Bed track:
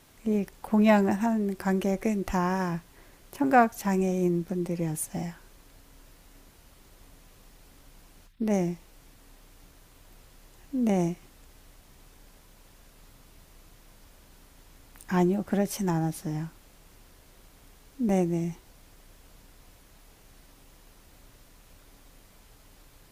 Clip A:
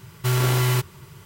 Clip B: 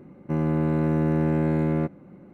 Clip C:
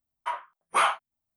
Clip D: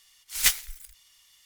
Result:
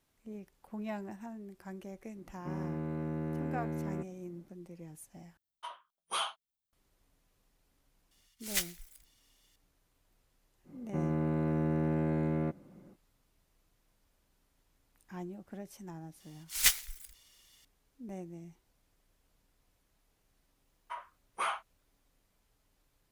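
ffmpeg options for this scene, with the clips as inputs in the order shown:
ffmpeg -i bed.wav -i cue0.wav -i cue1.wav -i cue2.wav -i cue3.wav -filter_complex "[2:a]asplit=2[link_01][link_02];[3:a]asplit=2[link_03][link_04];[4:a]asplit=2[link_05][link_06];[0:a]volume=-19dB[link_07];[link_03]highshelf=frequency=2700:width_type=q:width=3:gain=7[link_08];[link_02]equalizer=frequency=640:width=6.8:gain=3.5[link_09];[link_07]asplit=2[link_10][link_11];[link_10]atrim=end=5.374[link_12];[link_08]atrim=end=1.36,asetpts=PTS-STARTPTS,volume=-12.5dB[link_13];[link_11]atrim=start=6.726[link_14];[link_01]atrim=end=2.33,asetpts=PTS-STARTPTS,volume=-14dB,afade=type=in:duration=0.004:curve=hsin,afade=type=out:start_time=2.326:duration=0.004:curve=hsin,adelay=2160[link_15];[link_05]atrim=end=1.45,asetpts=PTS-STARTPTS,volume=-11dB,afade=type=in:duration=0.004:curve=hsin,afade=type=out:start_time=1.446:duration=0.004:curve=hsin,adelay=8110[link_16];[link_09]atrim=end=2.33,asetpts=PTS-STARTPTS,volume=-8.5dB,afade=type=in:duration=0.05,afade=type=out:start_time=2.28:duration=0.05,adelay=10640[link_17];[link_06]atrim=end=1.45,asetpts=PTS-STARTPTS,volume=-4dB,afade=type=in:duration=0.004:curve=hsin,afade=type=out:start_time=1.446:duration=0.004:curve=hsin,adelay=714420S[link_18];[link_04]atrim=end=1.36,asetpts=PTS-STARTPTS,volume=-11.5dB,afade=type=in:duration=0.004:curve=hsin,afade=type=out:start_time=1.356:duration=0.004:curve=hsin,adelay=20640[link_19];[link_12][link_13]acrossfade=duration=0.004:curve1=hsin:curve2=hsin[link_20];[link_20][link_14]acrossfade=duration=0.004:curve1=hsin:curve2=hsin[link_21];[link_21][link_15][link_16][link_17][link_18][link_19]amix=inputs=6:normalize=0" out.wav

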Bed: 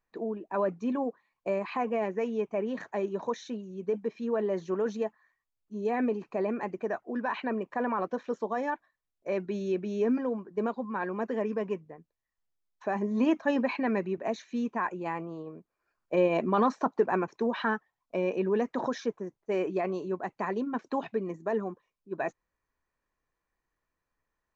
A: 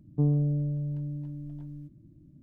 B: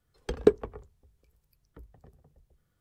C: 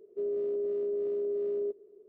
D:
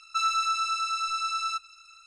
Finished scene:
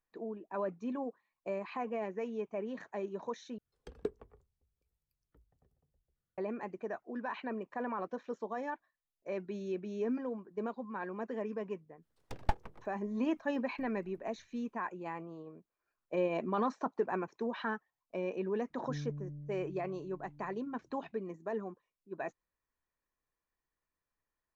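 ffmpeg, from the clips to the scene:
ffmpeg -i bed.wav -i cue0.wav -i cue1.wav -filter_complex "[2:a]asplit=2[link_01][link_02];[0:a]volume=-7.5dB[link_03];[link_02]aeval=exprs='abs(val(0))':channel_layout=same[link_04];[1:a]asplit=2[link_05][link_06];[link_06]adelay=40,volume=-7dB[link_07];[link_05][link_07]amix=inputs=2:normalize=0[link_08];[link_03]asplit=2[link_09][link_10];[link_09]atrim=end=3.584[link_11];[link_01]atrim=end=2.8,asetpts=PTS-STARTPTS,volume=-17dB[link_12];[link_10]atrim=start=6.376[link_13];[link_04]atrim=end=2.8,asetpts=PTS-STARTPTS,volume=-9dB,afade=type=in:duration=0.004:curve=hsin,afade=type=out:start_time=2.796:duration=0.004:curve=hsin,adelay=12020[link_14];[link_08]atrim=end=2.42,asetpts=PTS-STARTPTS,volume=-18dB,afade=type=in:duration=0.004:curve=hsin,afade=type=out:start_time=2.416:duration=0.004:curve=hsin,adelay=18700[link_15];[link_11][link_12]acrossfade=duration=0.004:curve1=hsin:curve2=hsin[link_16];[link_16][link_13]acrossfade=duration=0.004:curve1=hsin:curve2=hsin[link_17];[link_17][link_14][link_15]amix=inputs=3:normalize=0" out.wav

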